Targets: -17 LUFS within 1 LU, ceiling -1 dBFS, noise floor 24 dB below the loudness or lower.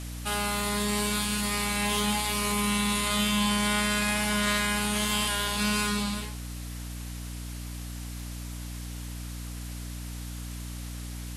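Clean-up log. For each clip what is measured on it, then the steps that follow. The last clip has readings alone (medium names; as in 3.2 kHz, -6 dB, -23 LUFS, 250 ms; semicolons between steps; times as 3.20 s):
hum 60 Hz; highest harmonic 300 Hz; hum level -35 dBFS; noise floor -38 dBFS; noise floor target -52 dBFS; loudness -28.0 LUFS; peak level -13.0 dBFS; loudness target -17.0 LUFS
-> hum notches 60/120/180/240/300 Hz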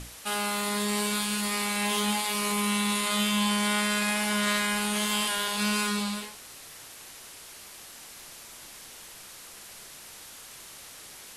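hum not found; noise floor -47 dBFS; noise floor target -51 dBFS
-> noise print and reduce 6 dB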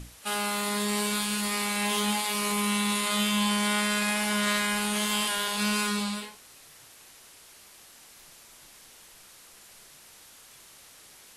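noise floor -53 dBFS; loudness -26.5 LUFS; peak level -13.5 dBFS; loudness target -17.0 LUFS
-> trim +9.5 dB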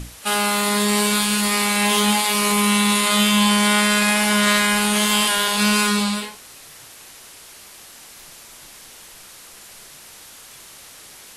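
loudness -17.0 LUFS; peak level -4.0 dBFS; noise floor -43 dBFS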